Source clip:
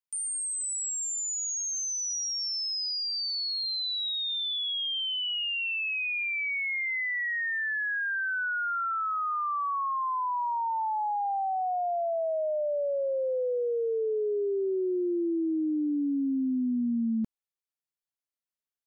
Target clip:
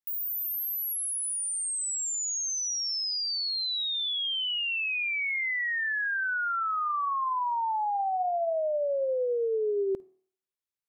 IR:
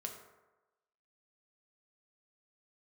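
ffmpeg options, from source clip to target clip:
-filter_complex "[0:a]asplit=2[link_01][link_02];[1:a]atrim=start_sample=2205,highshelf=frequency=4300:gain=9,adelay=89[link_03];[link_02][link_03]afir=irnorm=-1:irlink=0,volume=-17.5dB[link_04];[link_01][link_04]amix=inputs=2:normalize=0,asetrate=76440,aresample=44100"

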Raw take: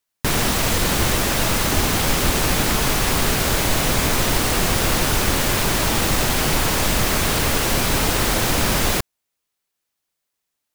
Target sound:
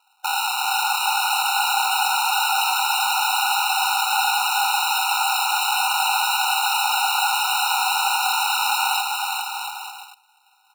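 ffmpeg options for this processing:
ffmpeg -i in.wav -filter_complex "[0:a]highpass=150,lowshelf=frequency=470:gain=-7.5,acrossover=split=190|3000[link_01][link_02][link_03];[link_02]acompressor=threshold=-37dB:ratio=2[link_04];[link_01][link_04][link_03]amix=inputs=3:normalize=0,asplit=2[link_05][link_06];[link_06]alimiter=limit=-18.5dB:level=0:latency=1:release=14,volume=3dB[link_07];[link_05][link_07]amix=inputs=2:normalize=0,aeval=exprs='(mod(10*val(0)+1,2)-1)/10':channel_layout=same,aexciter=amount=10.9:drive=5:freq=5800,acrusher=samples=39:mix=1:aa=0.000001,asoftclip=type=hard:threshold=-9.5dB,asplit=2[link_08][link_09];[link_09]aecho=0:1:410|697|897.9|1039|1137:0.631|0.398|0.251|0.158|0.1[link_10];[link_08][link_10]amix=inputs=2:normalize=0,afftfilt=real='re*eq(mod(floor(b*sr/1024/740),2),1)':imag='im*eq(mod(floor(b*sr/1024/740),2),1)':win_size=1024:overlap=0.75,volume=-1dB" out.wav

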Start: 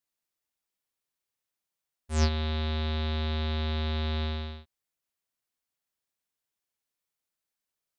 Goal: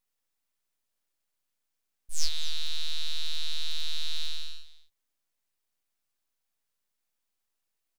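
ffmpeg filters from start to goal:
ffmpeg -i in.wav -af "aeval=exprs='abs(val(0))':channel_layout=same,aecho=1:1:245:0.168,volume=5.5dB" out.wav

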